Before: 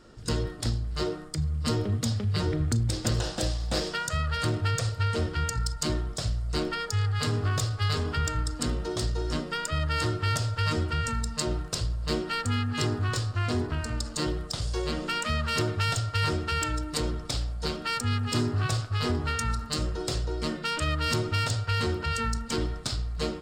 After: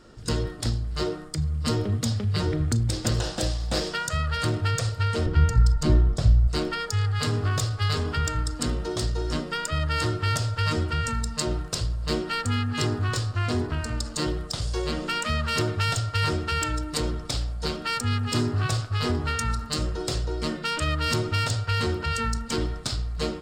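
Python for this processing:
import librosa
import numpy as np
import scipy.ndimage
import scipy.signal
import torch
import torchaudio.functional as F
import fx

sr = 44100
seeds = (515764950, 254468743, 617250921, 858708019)

y = fx.tilt_eq(x, sr, slope=-2.5, at=(5.26, 6.48))
y = y * 10.0 ** (2.0 / 20.0)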